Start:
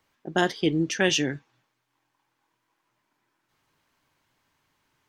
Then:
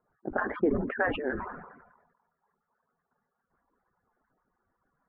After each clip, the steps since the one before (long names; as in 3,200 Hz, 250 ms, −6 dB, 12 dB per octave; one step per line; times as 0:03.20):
harmonic-percussive split with one part muted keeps percussive
Butterworth low-pass 1,600 Hz 48 dB per octave
level that may fall only so fast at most 52 dB per second
level +2 dB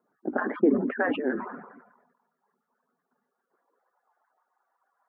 high-pass filter sweep 250 Hz → 770 Hz, 0:03.17–0:04.12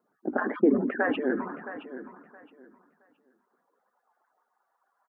repeating echo 669 ms, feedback 22%, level −13 dB